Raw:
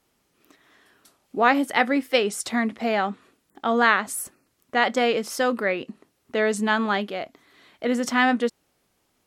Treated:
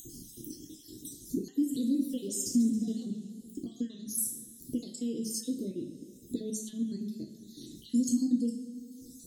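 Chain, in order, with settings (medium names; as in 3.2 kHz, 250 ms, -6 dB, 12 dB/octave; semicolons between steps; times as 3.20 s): random holes in the spectrogram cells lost 56%; upward compressor, threshold -33 dBFS; high-order bell 2.4 kHz +10 dB; two-slope reverb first 0.52 s, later 2.4 s, from -20 dB, DRR 1 dB; compression 2:1, threshold -30 dBFS, peak gain reduction 12.5 dB; elliptic band-stop 310–5900 Hz, stop band 50 dB; 1.42–3.68 s: modulated delay 137 ms, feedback 54%, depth 195 cents, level -13 dB; trim +5 dB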